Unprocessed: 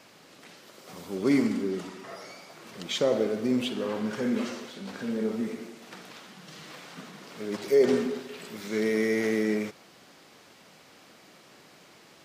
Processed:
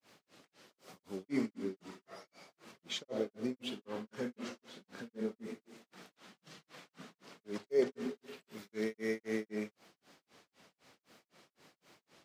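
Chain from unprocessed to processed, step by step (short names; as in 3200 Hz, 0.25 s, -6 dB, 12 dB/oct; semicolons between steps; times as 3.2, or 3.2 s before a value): requantised 12-bit, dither none; grains 0.231 s, grains 3.9/s, spray 15 ms, pitch spread up and down by 0 st; gain -7 dB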